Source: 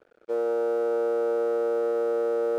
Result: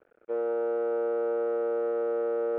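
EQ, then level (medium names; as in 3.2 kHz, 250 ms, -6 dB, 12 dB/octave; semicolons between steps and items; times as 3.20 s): low-pass 2.6 kHz 24 dB/octave; -3.0 dB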